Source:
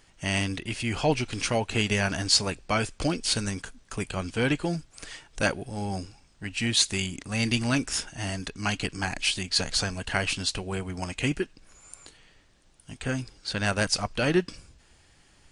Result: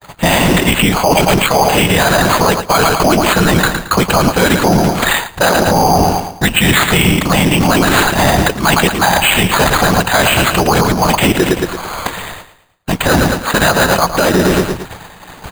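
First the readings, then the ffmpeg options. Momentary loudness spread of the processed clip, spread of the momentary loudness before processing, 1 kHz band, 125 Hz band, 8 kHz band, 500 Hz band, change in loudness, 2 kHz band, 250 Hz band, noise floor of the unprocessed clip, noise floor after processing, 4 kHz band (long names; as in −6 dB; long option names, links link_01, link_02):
5 LU, 12 LU, +23.0 dB, +15.5 dB, +13.5 dB, +18.5 dB, +16.0 dB, +17.0 dB, +16.5 dB, −60 dBFS, −37 dBFS, +13.0 dB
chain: -filter_complex "[0:a]lowpass=3500,equalizer=frequency=930:width=0.66:gain=14,afftfilt=real='hypot(re,im)*cos(2*PI*random(0))':imag='hypot(re,im)*sin(2*PI*random(1))':win_size=512:overlap=0.75,equalizer=frequency=180:width=6.4:gain=6.5,agate=range=-57dB:threshold=-59dB:ratio=16:detection=peak,tremolo=f=290:d=0.4,asplit=2[link_01][link_02];[link_02]aecho=0:1:111|222|333|444:0.224|0.0873|0.0341|0.0133[link_03];[link_01][link_03]amix=inputs=2:normalize=0,acrusher=samples=8:mix=1:aa=0.000001,areverse,acompressor=threshold=-36dB:ratio=10,areverse,alimiter=level_in=35dB:limit=-1dB:release=50:level=0:latency=1,volume=-1dB"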